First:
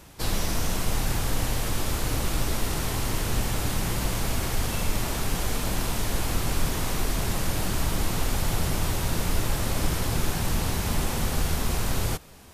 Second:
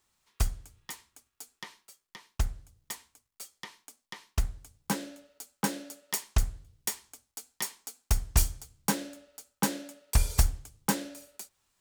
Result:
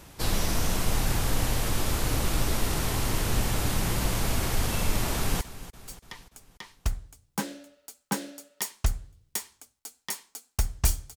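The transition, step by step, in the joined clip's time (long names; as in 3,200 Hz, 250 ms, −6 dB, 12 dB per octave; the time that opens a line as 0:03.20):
first
0:05.15–0:05.41: delay throw 290 ms, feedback 55%, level −15 dB
0:05.41: continue with second from 0:02.93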